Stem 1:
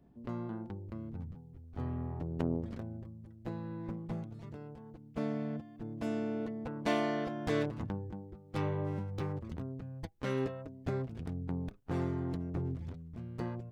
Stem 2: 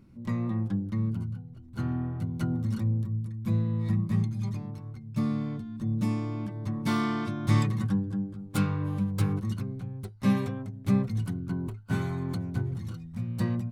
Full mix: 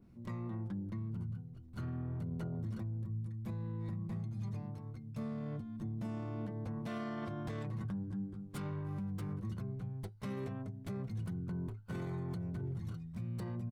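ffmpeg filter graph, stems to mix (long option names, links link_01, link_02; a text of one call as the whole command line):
ffmpeg -i stem1.wav -i stem2.wav -filter_complex "[0:a]volume=-8.5dB[link_01];[1:a]acompressor=threshold=-28dB:ratio=6,adynamicequalizer=threshold=0.00178:dfrequency=1900:dqfactor=0.7:tfrequency=1900:tqfactor=0.7:attack=5:release=100:ratio=0.375:range=3.5:mode=cutabove:tftype=highshelf,adelay=0.6,volume=-6dB[link_02];[link_01][link_02]amix=inputs=2:normalize=0,alimiter=level_in=9dB:limit=-24dB:level=0:latency=1:release=21,volume=-9dB" out.wav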